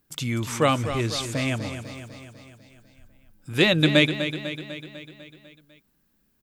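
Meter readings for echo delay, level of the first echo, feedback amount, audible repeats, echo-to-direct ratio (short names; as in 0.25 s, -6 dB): 0.249 s, -10.0 dB, 59%, 6, -8.0 dB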